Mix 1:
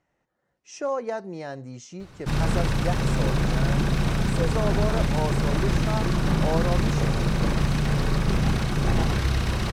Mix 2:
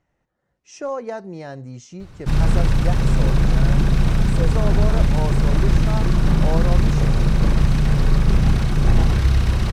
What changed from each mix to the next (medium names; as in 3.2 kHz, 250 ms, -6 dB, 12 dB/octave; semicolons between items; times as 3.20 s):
master: add bass shelf 120 Hz +11 dB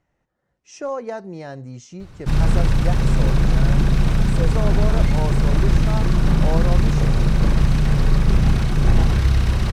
second sound: add frequency weighting D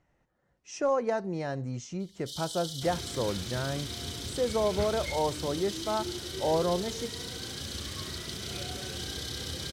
first sound: add brick-wall FIR high-pass 2.9 kHz